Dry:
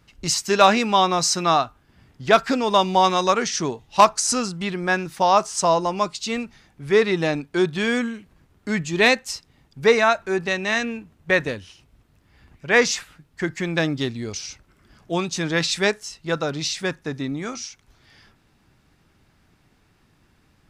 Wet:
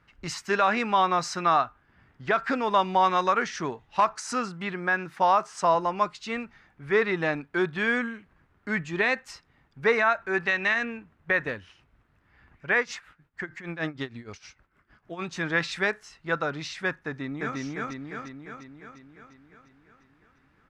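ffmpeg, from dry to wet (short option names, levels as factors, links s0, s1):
-filter_complex "[0:a]asettb=1/sr,asplit=3[s0][s1][s2];[s0]atrim=end=4.154[s3];[s1]atrim=start=4.15:end=5.75,asetpts=PTS-STARTPTS,afade=t=in:d=0.004:c=qsin,afade=t=out:st=1.596:d=0.004:c=qsin,highpass=95[s4];[s2]atrim=start=5.746[s5];[s3][s4]acrossfade=d=0.004:c1=hsin:c2=qsin[s6];[s6][s5]acrossfade=d=0.004:c1=qsin:c2=hsin,asplit=3[s7][s8][s9];[s7]afade=t=out:st=10.33:d=0.02[s10];[s8]equalizer=f=3300:w=0.38:g=6.5,afade=t=in:st=10.33:d=0.02,afade=t=out:st=10.73:d=0.02[s11];[s9]afade=t=in:st=10.73:d=0.02[s12];[s10][s11][s12]amix=inputs=3:normalize=0,asettb=1/sr,asplit=3[s13][s14][s15];[s13]atrim=end=12.784[s16];[s14]atrim=start=12.78:end=15.22,asetpts=PTS-STARTPTS,afade=t=in:d=0.004:c=qsin,afade=t=out:st=2.436:d=0.004:c=qsin,tremolo=f=6.5:d=0.85[s17];[s15]atrim=start=15.216[s18];[s16][s17]acrossfade=d=0.004:c1=hsin:c2=qsin[s19];[s19][s18]acrossfade=d=0.004:c1=qsin:c2=hsin,asplit=2[s20][s21];[s21]afade=t=in:st=17.05:d=0.01,afade=t=out:st=17.58:d=0.01,aecho=0:1:350|700|1050|1400|1750|2100|2450|2800|3150|3500:1|0.6|0.36|0.216|0.1296|0.07776|0.046656|0.0279936|0.0167962|0.0100777[s22];[s20][s22]amix=inputs=2:normalize=0,equalizer=f=1600:w=0.77:g=11.5,alimiter=limit=0.75:level=0:latency=1:release=96,highshelf=f=3000:g=-11,volume=0.422"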